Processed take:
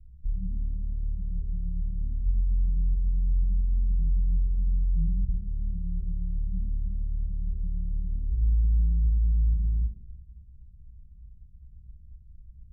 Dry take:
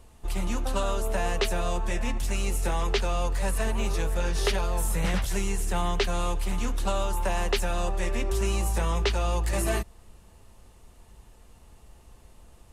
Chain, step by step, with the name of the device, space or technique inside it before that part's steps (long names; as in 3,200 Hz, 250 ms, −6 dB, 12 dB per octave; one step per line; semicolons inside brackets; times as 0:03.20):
club heard from the street (brickwall limiter −19.5 dBFS, peak gain reduction 4.5 dB; low-pass filter 140 Hz 24 dB per octave; convolution reverb RT60 0.95 s, pre-delay 4 ms, DRR −2.5 dB)